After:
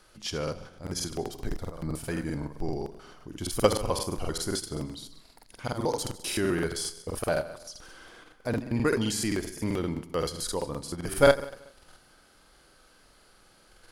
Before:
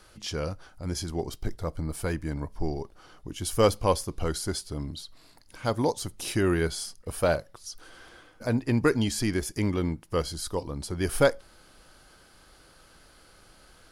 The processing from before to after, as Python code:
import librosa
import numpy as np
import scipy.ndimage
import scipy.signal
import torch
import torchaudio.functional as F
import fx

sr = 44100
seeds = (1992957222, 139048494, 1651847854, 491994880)

p1 = fx.peak_eq(x, sr, hz=76.0, db=-7.0, octaves=1.0)
p2 = fx.level_steps(p1, sr, step_db=18)
p3 = p1 + (p2 * 10.0 ** (2.5 / 20.0))
p4 = fx.echo_feedback(p3, sr, ms=75, feedback_pct=53, wet_db=-12.0)
p5 = fx.buffer_crackle(p4, sr, first_s=0.43, period_s=0.13, block=2048, kind='repeat')
y = p5 * 10.0 ** (-5.0 / 20.0)